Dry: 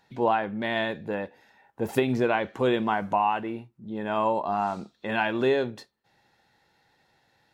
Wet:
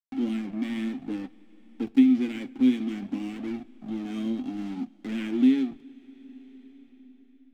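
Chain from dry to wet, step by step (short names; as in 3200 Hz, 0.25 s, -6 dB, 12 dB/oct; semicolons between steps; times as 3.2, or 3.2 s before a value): spectral whitening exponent 0.6; vowel filter i; bell 260 Hz +14 dB 0.95 oct; notches 60/120 Hz; backlash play -36.5 dBFS; flange 0.58 Hz, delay 1.5 ms, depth 7.2 ms, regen +53%; two-slope reverb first 0.26 s, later 3.8 s, from -18 dB, DRR 16.5 dB; three-band squash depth 40%; gain +6.5 dB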